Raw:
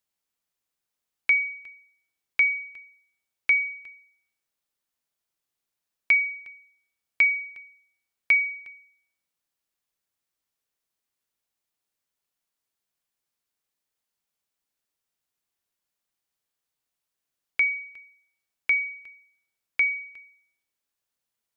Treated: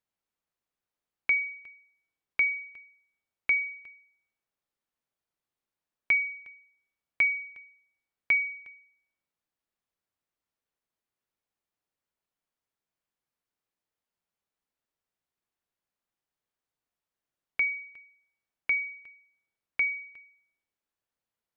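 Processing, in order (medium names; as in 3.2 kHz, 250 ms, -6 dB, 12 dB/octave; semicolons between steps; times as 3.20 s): treble shelf 3 kHz -12 dB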